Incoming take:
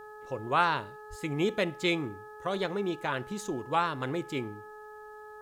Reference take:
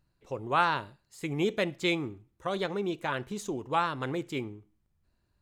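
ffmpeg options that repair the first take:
-filter_complex "[0:a]bandreject=f=425.1:t=h:w=4,bandreject=f=850.2:t=h:w=4,bandreject=f=1.2753k:t=h:w=4,bandreject=f=1.7004k:t=h:w=4,asplit=3[a][b][c];[a]afade=t=out:st=1.09:d=0.02[d];[b]highpass=f=140:w=0.5412,highpass=f=140:w=1.3066,afade=t=in:st=1.09:d=0.02,afade=t=out:st=1.21:d=0.02[e];[c]afade=t=in:st=1.21:d=0.02[f];[d][e][f]amix=inputs=3:normalize=0,agate=range=-21dB:threshold=-39dB"

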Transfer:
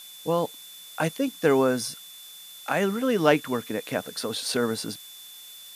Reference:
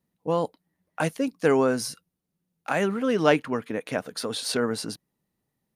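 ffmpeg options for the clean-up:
-af "bandreject=f=3.5k:w=30,afftdn=nr=30:nf=-45"

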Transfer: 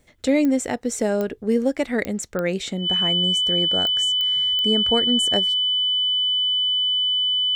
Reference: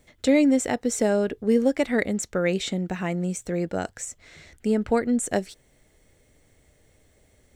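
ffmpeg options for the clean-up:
-af "adeclick=t=4,bandreject=f=3k:w=30"

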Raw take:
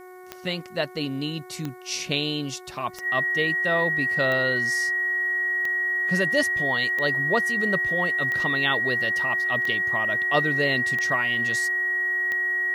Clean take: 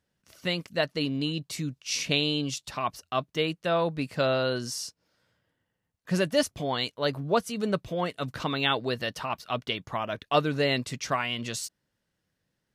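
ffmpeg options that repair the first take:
-af "adeclick=t=4,bandreject=f=366.9:t=h:w=4,bandreject=f=733.8:t=h:w=4,bandreject=f=1.1007k:t=h:w=4,bandreject=f=1.4676k:t=h:w=4,bandreject=f=1.8345k:t=h:w=4,bandreject=f=2.2014k:t=h:w=4,bandreject=f=1.9k:w=30,agate=range=-21dB:threshold=-29dB"

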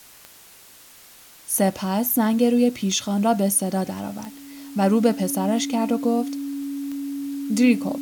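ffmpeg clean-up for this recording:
-af "adeclick=t=4,bandreject=f=280:w=30,afwtdn=0.0045"

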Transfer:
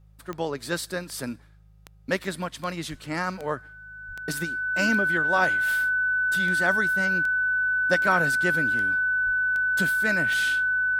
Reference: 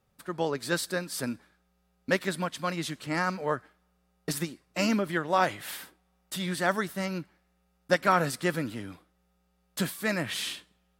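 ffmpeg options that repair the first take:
-filter_complex "[0:a]adeclick=t=4,bandreject=f=52.3:t=h:w=4,bandreject=f=104.6:t=h:w=4,bandreject=f=156.9:t=h:w=4,bandreject=f=1.5k:w=30,asplit=3[a][b][c];[a]afade=t=out:st=2.9:d=0.02[d];[b]highpass=f=140:w=0.5412,highpass=f=140:w=1.3066,afade=t=in:st=2.9:d=0.02,afade=t=out:st=3.02:d=0.02[e];[c]afade=t=in:st=3.02:d=0.02[f];[d][e][f]amix=inputs=3:normalize=0,asplit=3[g][h][i];[g]afade=t=out:st=4.07:d=0.02[j];[h]highpass=f=140:w=0.5412,highpass=f=140:w=1.3066,afade=t=in:st=4.07:d=0.02,afade=t=out:st=4.19:d=0.02[k];[i]afade=t=in:st=4.19:d=0.02[l];[j][k][l]amix=inputs=3:normalize=0,asplit=3[m][n][o];[m]afade=t=out:st=9.25:d=0.02[p];[n]highpass=f=140:w=0.5412,highpass=f=140:w=1.3066,afade=t=in:st=9.25:d=0.02,afade=t=out:st=9.37:d=0.02[q];[o]afade=t=in:st=9.37:d=0.02[r];[p][q][r]amix=inputs=3:normalize=0"

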